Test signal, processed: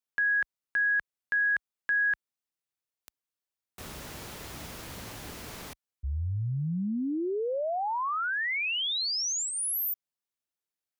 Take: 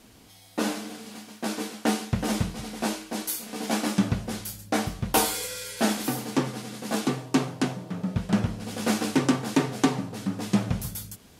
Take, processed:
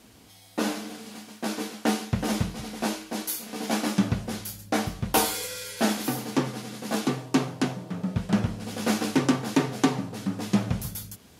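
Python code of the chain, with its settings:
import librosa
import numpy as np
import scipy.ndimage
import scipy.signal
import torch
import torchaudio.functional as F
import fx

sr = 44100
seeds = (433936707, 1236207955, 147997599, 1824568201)

y = scipy.signal.sosfilt(scipy.signal.butter(2, 43.0, 'highpass', fs=sr, output='sos'), x)
y = fx.dynamic_eq(y, sr, hz=8300.0, q=6.1, threshold_db=-56.0, ratio=4.0, max_db=-5)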